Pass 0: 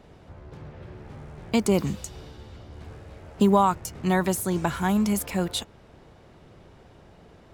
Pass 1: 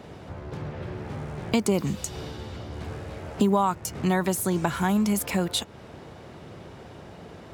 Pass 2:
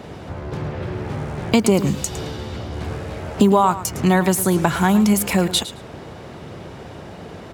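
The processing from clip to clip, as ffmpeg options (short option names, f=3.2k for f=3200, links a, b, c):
-af "highpass=80,acompressor=threshold=-36dB:ratio=2,volume=8.5dB"
-af "aecho=1:1:109|218:0.2|0.0319,volume=7.5dB"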